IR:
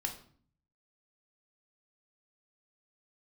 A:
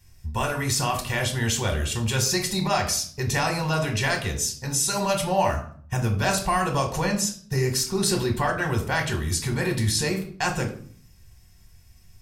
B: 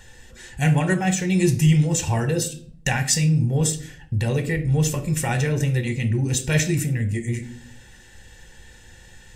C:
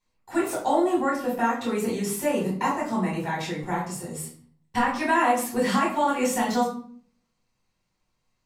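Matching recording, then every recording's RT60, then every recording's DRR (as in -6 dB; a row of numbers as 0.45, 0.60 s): A; 0.50, 0.50, 0.50 s; 3.0, 8.0, -6.5 dB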